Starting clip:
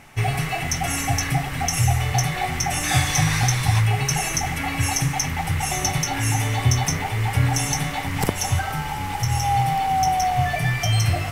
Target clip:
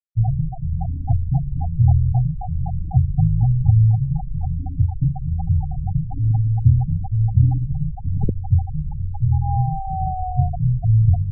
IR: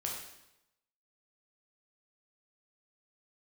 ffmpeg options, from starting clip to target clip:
-af "aemphasis=mode=reproduction:type=riaa,afftfilt=real='re*gte(hypot(re,im),0.501)':imag='im*gte(hypot(re,im),0.501)':win_size=1024:overlap=0.75,volume=0.447"

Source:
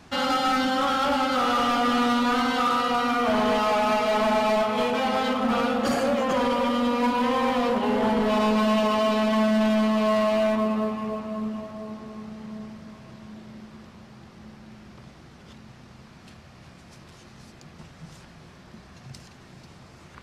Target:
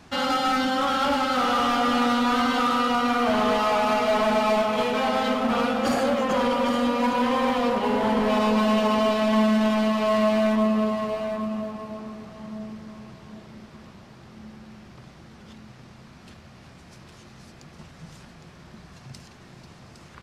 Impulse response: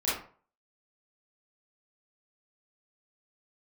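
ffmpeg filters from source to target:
-af "aecho=1:1:810:0.376"

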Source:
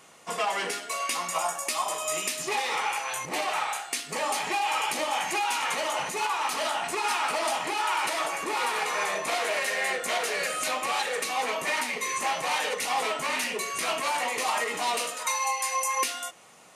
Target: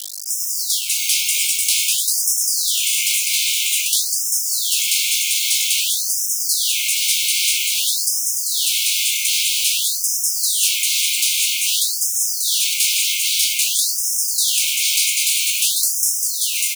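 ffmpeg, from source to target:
-filter_complex "[0:a]asplit=2[s0][s1];[s1]acrusher=samples=17:mix=1:aa=0.000001,volume=0.335[s2];[s0][s2]amix=inputs=2:normalize=0,aeval=exprs='val(0)+0.0141*(sin(2*PI*50*n/s)+sin(2*PI*2*50*n/s)/2+sin(2*PI*3*50*n/s)/3+sin(2*PI*4*50*n/s)/4+sin(2*PI*5*50*n/s)/5)':c=same,asplit=2[s3][s4];[s4]aecho=0:1:792|1584|2376|3168|3960|4752|5544|6336:0.501|0.291|0.169|0.0978|0.0567|0.0329|0.0191|0.0111[s5];[s3][s5]amix=inputs=2:normalize=0,acrusher=bits=5:mix=0:aa=0.000001,afftfilt=real='re*lt(hypot(re,im),0.0631)':imag='im*lt(hypot(re,im),0.0631)':win_size=1024:overlap=0.75,acrossover=split=490|3000[s6][s7][s8];[s6]acompressor=threshold=0.00708:ratio=8[s9];[s9][s7][s8]amix=inputs=3:normalize=0,afftfilt=real='re*(1-between(b*sr/4096,860,2100))':imag='im*(1-between(b*sr/4096,860,2100))':win_size=4096:overlap=0.75,tiltshelf=f=970:g=-8,afftfilt=real='re*gte(b*sr/1024,880*pow(5200/880,0.5+0.5*sin(2*PI*0.51*pts/sr)))':imag='im*gte(b*sr/1024,880*pow(5200/880,0.5+0.5*sin(2*PI*0.51*pts/sr)))':win_size=1024:overlap=0.75,volume=2.82"

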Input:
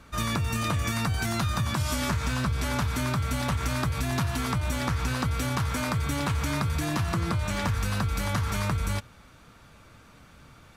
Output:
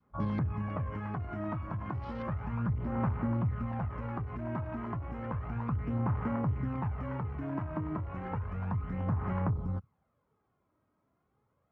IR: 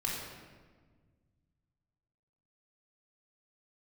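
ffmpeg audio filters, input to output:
-af "highpass=120,afwtdn=0.0178,aphaser=in_gain=1:out_gain=1:delay=2.9:decay=0.44:speed=0.35:type=sinusoidal,lowpass=1000,aemphasis=mode=production:type=50kf,asetrate=40517,aresample=44100,adynamicequalizer=threshold=0.00562:dfrequency=570:dqfactor=0.74:tfrequency=570:tqfactor=0.74:attack=5:release=100:ratio=0.375:range=2:mode=cutabove:tftype=bell,volume=0.668"

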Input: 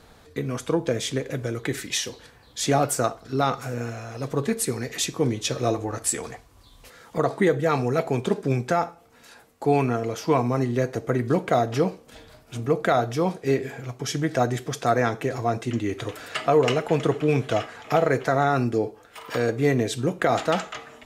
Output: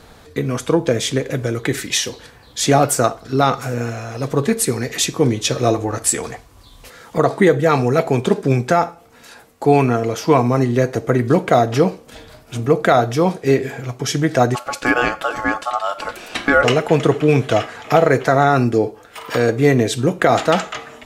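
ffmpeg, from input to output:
-filter_complex "[0:a]asplit=3[s0][s1][s2];[s0]afade=t=out:st=14.54:d=0.02[s3];[s1]aeval=exprs='val(0)*sin(2*PI*980*n/s)':c=same,afade=t=in:st=14.54:d=0.02,afade=t=out:st=16.63:d=0.02[s4];[s2]afade=t=in:st=16.63:d=0.02[s5];[s3][s4][s5]amix=inputs=3:normalize=0,volume=2.37"

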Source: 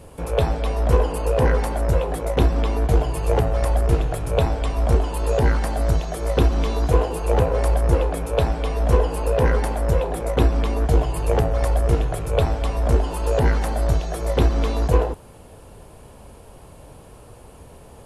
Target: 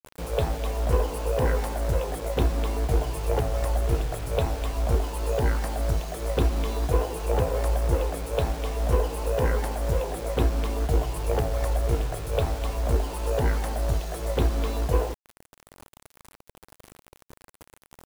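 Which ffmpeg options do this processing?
-af "adynamicequalizer=threshold=0.0224:dfrequency=170:dqfactor=1.5:tfrequency=170:tqfactor=1.5:attack=5:release=100:ratio=0.375:range=1.5:mode=cutabove:tftype=bell,acrusher=bits=5:mix=0:aa=0.000001,volume=0.531"

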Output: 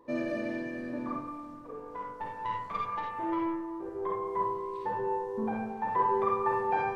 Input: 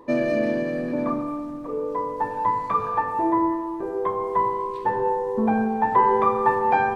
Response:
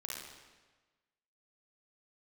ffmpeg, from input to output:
-filter_complex "[0:a]asettb=1/sr,asplit=3[s0][s1][s2];[s0]atrim=end=1.554[s3];[s1]atrim=start=1.55:end=4.02,asetpts=PTS-STARTPTS,afade=t=in:d=0.004:c=qsin,afade=t=out:st=2.466:d=0.004:c=qsin,aeval=exprs='(tanh(7.08*val(0)+0.45)-tanh(0.45))/7.08':c=same[s4];[s2]atrim=start=4.016[s5];[s3][s4]acrossfade=d=0.004:c1=hsin:c2=qsin[s6];[s6][s5]acrossfade=d=0.004:c1=qsin:c2=hsin[s7];[1:a]atrim=start_sample=2205,atrim=end_sample=4410[s8];[s7][s8]afir=irnorm=-1:irlink=0,volume=0.501"

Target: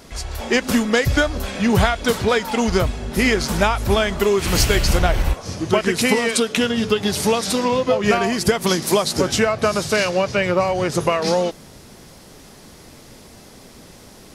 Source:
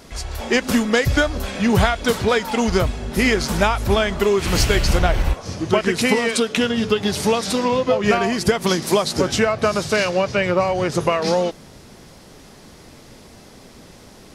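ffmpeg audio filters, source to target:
-af "asetnsamples=n=441:p=0,asendcmd='3.88 highshelf g 7.5',highshelf=f=8900:g=2"

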